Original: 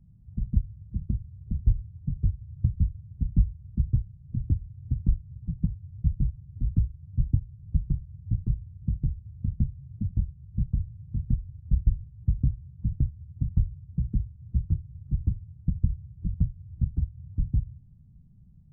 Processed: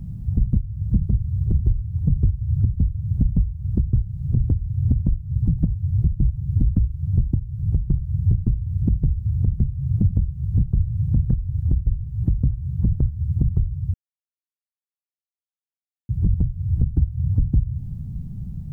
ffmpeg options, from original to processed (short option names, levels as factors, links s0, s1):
-filter_complex "[0:a]asplit=3[s0][s1][s2];[s0]atrim=end=13.94,asetpts=PTS-STARTPTS,afade=t=out:st=13.936:d=0.004:c=hsin[s3];[s1]atrim=start=13.94:end=16.09,asetpts=PTS-STARTPTS,volume=0[s4];[s2]atrim=start=16.09,asetpts=PTS-STARTPTS,afade=t=in:d=0.004:c=hsin[s5];[s3][s4][s5]concat=n=3:v=0:a=1,acompressor=threshold=0.0224:ratio=12,alimiter=level_in=37.6:limit=0.891:release=50:level=0:latency=1,volume=0.376"